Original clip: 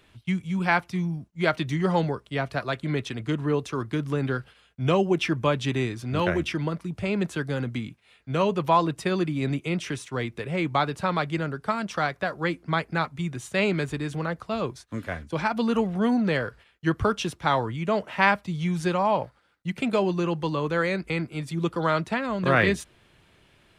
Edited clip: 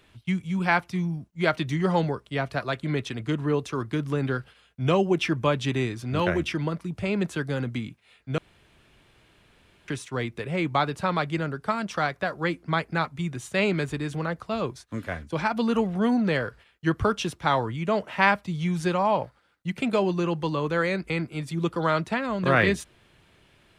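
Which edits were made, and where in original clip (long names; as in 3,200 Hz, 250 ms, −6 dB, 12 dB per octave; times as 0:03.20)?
0:08.38–0:09.88: fill with room tone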